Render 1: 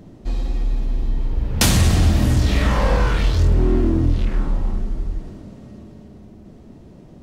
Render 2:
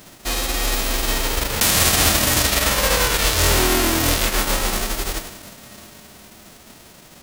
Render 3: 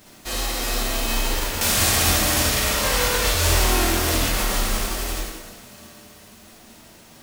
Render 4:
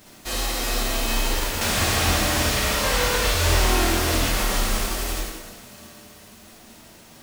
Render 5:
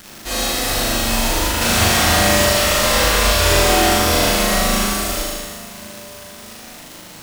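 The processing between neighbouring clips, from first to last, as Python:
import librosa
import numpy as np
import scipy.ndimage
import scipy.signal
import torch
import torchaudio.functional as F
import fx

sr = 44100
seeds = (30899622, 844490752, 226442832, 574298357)

y1 = fx.envelope_flatten(x, sr, power=0.3)
y1 = F.gain(torch.from_numpy(y1), -2.5).numpy()
y2 = fx.rev_plate(y1, sr, seeds[0], rt60_s=1.1, hf_ratio=0.85, predelay_ms=0, drr_db=-3.5)
y2 = F.gain(torch.from_numpy(y2), -7.5).numpy()
y3 = fx.slew_limit(y2, sr, full_power_hz=400.0)
y4 = fx.dmg_crackle(y3, sr, seeds[1], per_s=360.0, level_db=-30.0)
y4 = fx.room_flutter(y4, sr, wall_m=6.7, rt60_s=1.1)
y4 = F.gain(torch.from_numpy(y4), 3.0).numpy()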